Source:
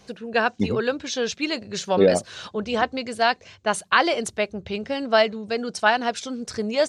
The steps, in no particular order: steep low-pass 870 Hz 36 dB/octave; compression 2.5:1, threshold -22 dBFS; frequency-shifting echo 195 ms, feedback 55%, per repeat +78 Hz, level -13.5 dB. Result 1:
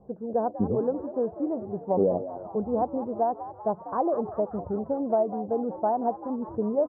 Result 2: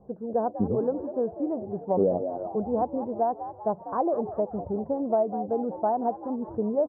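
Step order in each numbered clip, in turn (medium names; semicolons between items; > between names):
steep low-pass > compression > frequency-shifting echo; frequency-shifting echo > steep low-pass > compression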